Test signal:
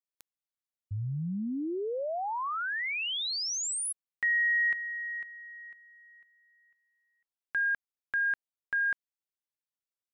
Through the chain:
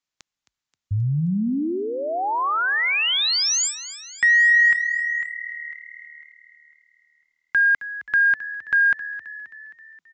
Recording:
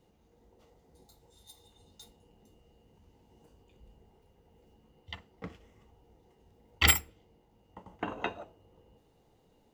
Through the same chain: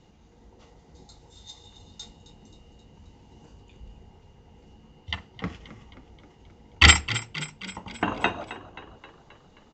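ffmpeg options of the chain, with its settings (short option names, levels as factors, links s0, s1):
-filter_complex "[0:a]equalizer=f=490:t=o:w=1.2:g=-6.5,aresample=16000,aeval=exprs='0.376*sin(PI/2*1.41*val(0)/0.376)':c=same,aresample=44100,asplit=7[s0][s1][s2][s3][s4][s5][s6];[s1]adelay=265,afreqshift=38,volume=0.178[s7];[s2]adelay=530,afreqshift=76,volume=0.101[s8];[s3]adelay=795,afreqshift=114,volume=0.0575[s9];[s4]adelay=1060,afreqshift=152,volume=0.0331[s10];[s5]adelay=1325,afreqshift=190,volume=0.0188[s11];[s6]adelay=1590,afreqshift=228,volume=0.0107[s12];[s0][s7][s8][s9][s10][s11][s12]amix=inputs=7:normalize=0,volume=1.78"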